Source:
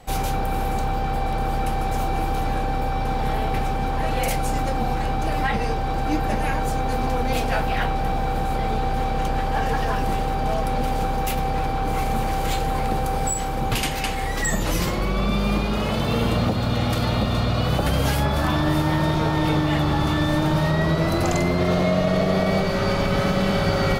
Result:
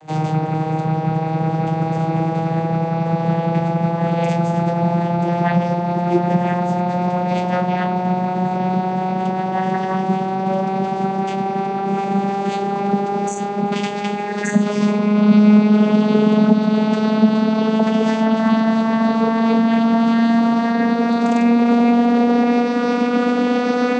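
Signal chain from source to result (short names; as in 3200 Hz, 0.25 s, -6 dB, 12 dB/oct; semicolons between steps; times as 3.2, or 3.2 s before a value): vocoder on a gliding note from D#3, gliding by +8 st; gain +7.5 dB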